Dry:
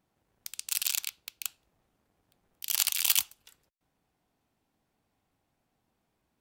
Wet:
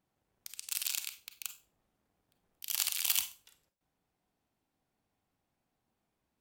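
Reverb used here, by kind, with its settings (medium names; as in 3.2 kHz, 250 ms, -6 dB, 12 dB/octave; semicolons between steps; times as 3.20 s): Schroeder reverb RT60 0.31 s, combs from 31 ms, DRR 9 dB; trim -5.5 dB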